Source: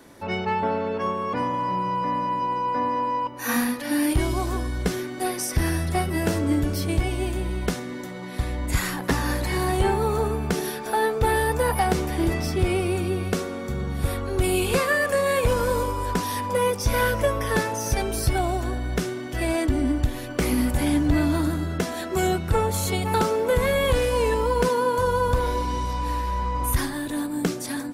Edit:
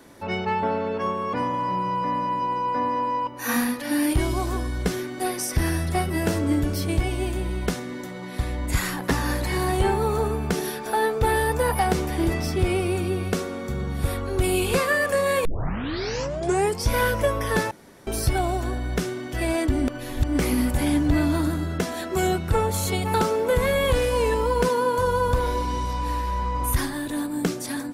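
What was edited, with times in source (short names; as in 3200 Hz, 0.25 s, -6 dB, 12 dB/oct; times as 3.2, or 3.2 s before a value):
15.45 tape start 1.45 s
17.71–18.07 room tone
19.88–20.39 reverse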